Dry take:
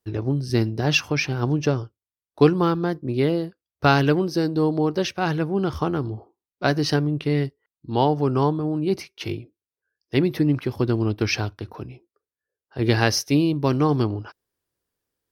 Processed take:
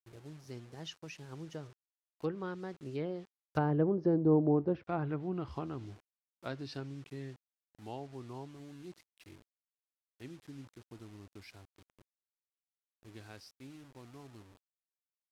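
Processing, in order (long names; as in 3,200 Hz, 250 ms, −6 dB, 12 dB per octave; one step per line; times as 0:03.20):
source passing by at 0:04.30, 25 m/s, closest 9.4 metres
bit reduction 9 bits
treble cut that deepens with the level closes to 770 Hz, closed at −23 dBFS
level −5 dB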